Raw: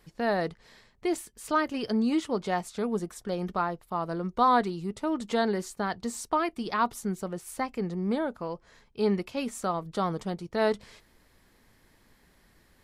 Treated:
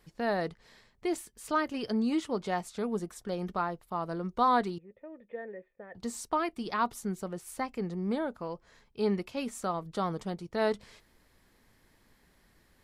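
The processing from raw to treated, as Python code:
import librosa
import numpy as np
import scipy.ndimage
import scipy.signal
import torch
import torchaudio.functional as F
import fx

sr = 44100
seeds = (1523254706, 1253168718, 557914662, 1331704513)

y = fx.formant_cascade(x, sr, vowel='e', at=(4.78, 5.95))
y = F.gain(torch.from_numpy(y), -3.0).numpy()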